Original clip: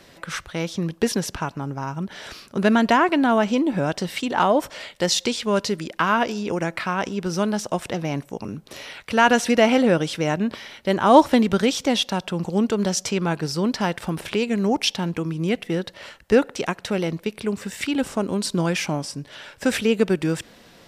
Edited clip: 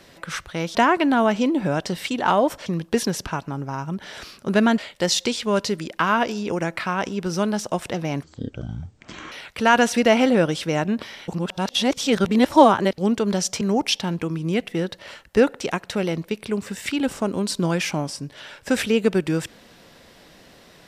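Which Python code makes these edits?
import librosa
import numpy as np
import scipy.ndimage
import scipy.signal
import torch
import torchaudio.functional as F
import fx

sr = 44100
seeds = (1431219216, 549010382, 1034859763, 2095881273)

y = fx.edit(x, sr, fx.move(start_s=2.87, length_s=1.91, to_s=0.75),
    fx.speed_span(start_s=8.23, length_s=0.61, speed=0.56),
    fx.reverse_span(start_s=10.8, length_s=1.7),
    fx.cut(start_s=13.13, length_s=1.43), tone=tone)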